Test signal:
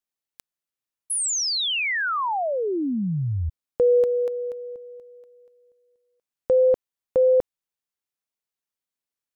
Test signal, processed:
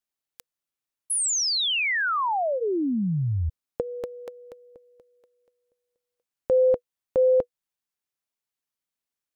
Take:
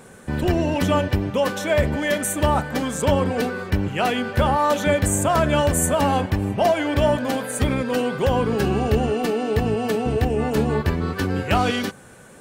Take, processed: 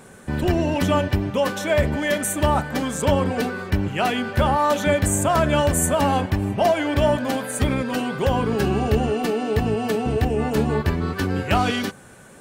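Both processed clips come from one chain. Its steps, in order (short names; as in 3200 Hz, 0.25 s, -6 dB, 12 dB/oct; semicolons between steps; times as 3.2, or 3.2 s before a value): notch 490 Hz, Q 16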